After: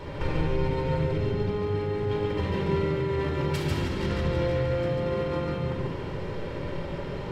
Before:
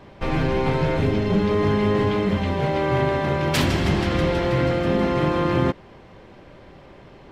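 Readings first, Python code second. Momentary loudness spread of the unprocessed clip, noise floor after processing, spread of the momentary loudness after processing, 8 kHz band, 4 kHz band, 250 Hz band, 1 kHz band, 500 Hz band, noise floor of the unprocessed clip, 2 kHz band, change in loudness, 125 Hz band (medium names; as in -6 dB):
3 LU, -34 dBFS, 8 LU, -11.0 dB, -8.5 dB, -8.5 dB, -9.0 dB, -5.0 dB, -46 dBFS, -9.0 dB, -7.0 dB, -4.5 dB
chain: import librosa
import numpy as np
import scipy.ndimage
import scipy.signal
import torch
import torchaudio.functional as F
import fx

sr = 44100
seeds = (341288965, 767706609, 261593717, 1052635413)

p1 = fx.notch(x, sr, hz=760.0, q=12.0)
p2 = fx.over_compress(p1, sr, threshold_db=-30.0, ratio=-1.0)
p3 = p2 + fx.echo_single(p2, sr, ms=142, db=-3.0, dry=0)
p4 = fx.room_shoebox(p3, sr, seeds[0], volume_m3=4000.0, walls='furnished', distance_m=4.5)
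y = p4 * 10.0 ** (-4.5 / 20.0)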